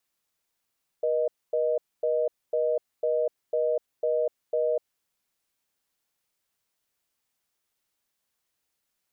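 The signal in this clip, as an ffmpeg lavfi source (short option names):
-f lavfi -i "aevalsrc='0.0562*(sin(2*PI*480*t)+sin(2*PI*620*t))*clip(min(mod(t,0.5),0.25-mod(t,0.5))/0.005,0,1)':d=3.75:s=44100"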